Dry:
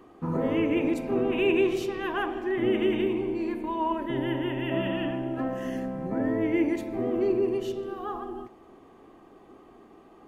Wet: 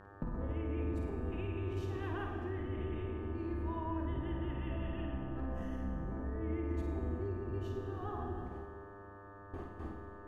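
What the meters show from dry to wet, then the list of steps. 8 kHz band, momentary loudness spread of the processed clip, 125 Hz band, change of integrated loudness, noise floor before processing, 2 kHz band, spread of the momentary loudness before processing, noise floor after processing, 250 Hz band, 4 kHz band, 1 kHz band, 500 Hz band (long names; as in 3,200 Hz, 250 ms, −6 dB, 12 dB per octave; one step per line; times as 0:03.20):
can't be measured, 9 LU, 0.0 dB, −12.0 dB, −53 dBFS, −15.0 dB, 8 LU, −52 dBFS, −13.0 dB, −18.5 dB, −11.5 dB, −15.0 dB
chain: sub-octave generator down 2 octaves, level +3 dB
noise gate with hold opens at −39 dBFS
spectral tilt −1.5 dB per octave
brickwall limiter −20.5 dBFS, peak gain reduction 12 dB
downward compressor 8 to 1, threshold −43 dBFS, peak gain reduction 18.5 dB
hum with harmonics 100 Hz, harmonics 18, −61 dBFS −2 dB per octave
flutter between parallel walls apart 9 metres, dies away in 0.47 s
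four-comb reverb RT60 1.9 s, combs from 31 ms, DRR 6 dB
level +4.5 dB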